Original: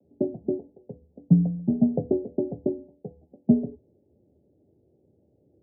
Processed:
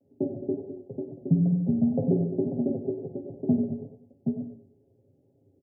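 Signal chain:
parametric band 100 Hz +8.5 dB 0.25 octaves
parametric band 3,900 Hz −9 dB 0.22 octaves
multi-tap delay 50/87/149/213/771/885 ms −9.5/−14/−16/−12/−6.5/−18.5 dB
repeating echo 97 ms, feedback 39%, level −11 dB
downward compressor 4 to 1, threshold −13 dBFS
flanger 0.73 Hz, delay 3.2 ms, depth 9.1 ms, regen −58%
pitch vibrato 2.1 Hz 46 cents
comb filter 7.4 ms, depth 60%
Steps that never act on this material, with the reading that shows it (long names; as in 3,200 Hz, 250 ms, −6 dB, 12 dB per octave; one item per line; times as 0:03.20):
parametric band 3,900 Hz: nothing at its input above 680 Hz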